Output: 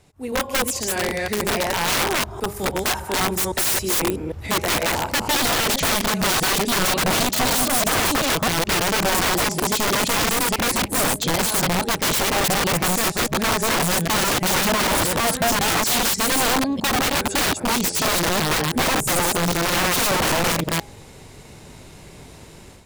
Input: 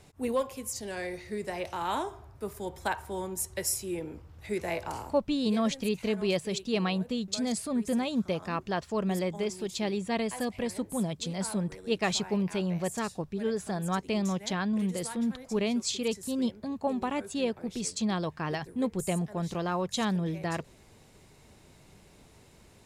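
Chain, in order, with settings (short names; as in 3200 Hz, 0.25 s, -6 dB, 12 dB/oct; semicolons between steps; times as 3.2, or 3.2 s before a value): reverse delay 0.16 s, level -0.5 dB; AGC gain up to 11.5 dB; wrapped overs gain 15 dB; de-hum 205.1 Hz, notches 4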